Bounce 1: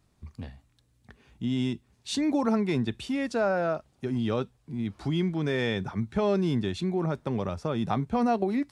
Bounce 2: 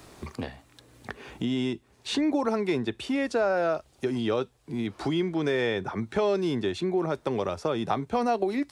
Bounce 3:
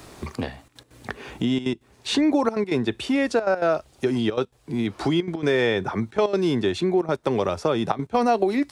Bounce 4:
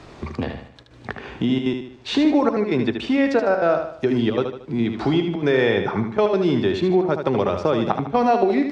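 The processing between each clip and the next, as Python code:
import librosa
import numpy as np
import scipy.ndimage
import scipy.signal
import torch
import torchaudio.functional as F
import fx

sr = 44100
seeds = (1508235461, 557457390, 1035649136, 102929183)

y1 = fx.low_shelf_res(x, sr, hz=270.0, db=-6.5, q=1.5)
y1 = fx.band_squash(y1, sr, depth_pct=70)
y1 = F.gain(torch.from_numpy(y1), 1.5).numpy()
y2 = fx.step_gate(y1, sr, bpm=199, pattern='xxxxxxxxx.x.', floor_db=-12.0, edge_ms=4.5)
y2 = F.gain(torch.from_numpy(y2), 5.5).numpy()
y3 = fx.air_absorb(y2, sr, metres=140.0)
y3 = fx.echo_feedback(y3, sr, ms=76, feedback_pct=42, wet_db=-7.0)
y3 = F.gain(torch.from_numpy(y3), 2.5).numpy()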